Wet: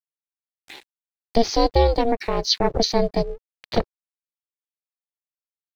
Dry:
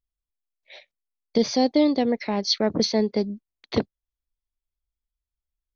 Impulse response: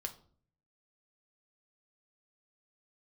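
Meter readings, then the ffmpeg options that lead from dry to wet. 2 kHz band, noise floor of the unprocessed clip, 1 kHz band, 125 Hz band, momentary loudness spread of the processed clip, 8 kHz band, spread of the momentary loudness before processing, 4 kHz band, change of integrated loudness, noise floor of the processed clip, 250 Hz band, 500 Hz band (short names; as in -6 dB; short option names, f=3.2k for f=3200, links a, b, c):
+2.0 dB, under -85 dBFS, +7.5 dB, +7.5 dB, 9 LU, n/a, 9 LU, +2.5 dB, +1.5 dB, under -85 dBFS, -3.5 dB, +3.0 dB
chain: -af "aeval=exprs='sgn(val(0))*max(abs(val(0))-0.00237,0)':c=same,acompressor=mode=upward:threshold=-37dB:ratio=2.5,aeval=exprs='val(0)*sin(2*PI*230*n/s)':c=same,volume=5.5dB"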